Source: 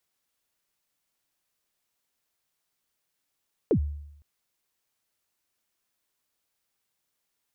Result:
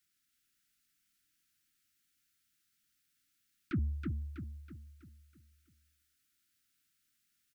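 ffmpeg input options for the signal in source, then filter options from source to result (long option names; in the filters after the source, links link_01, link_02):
-f lavfi -i "aevalsrc='0.15*pow(10,-3*t/0.81)*sin(2*PI*(520*0.082/log(73/520)*(exp(log(73/520)*min(t,0.082)/0.082)-1)+73*max(t-0.082,0)))':duration=0.51:sample_rate=44100"
-af "asoftclip=type=tanh:threshold=-29dB,asuperstop=centerf=660:order=20:qfactor=0.71,aecho=1:1:324|648|972|1296|1620|1944:0.631|0.284|0.128|0.0575|0.0259|0.0116"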